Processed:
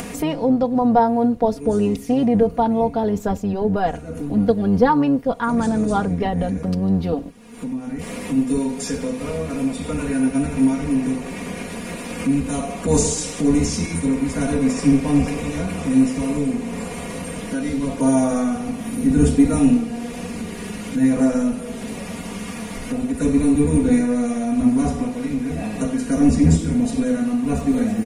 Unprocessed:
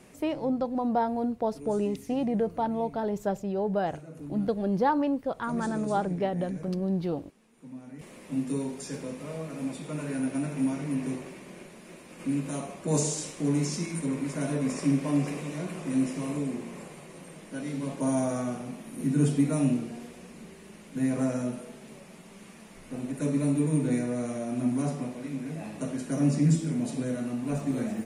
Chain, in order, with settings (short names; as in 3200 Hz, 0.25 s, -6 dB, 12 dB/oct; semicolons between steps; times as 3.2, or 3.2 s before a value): octaver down 1 oct, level -3 dB; comb 4.2 ms, depth 77%; upward compressor, threshold -26 dBFS; gain +6.5 dB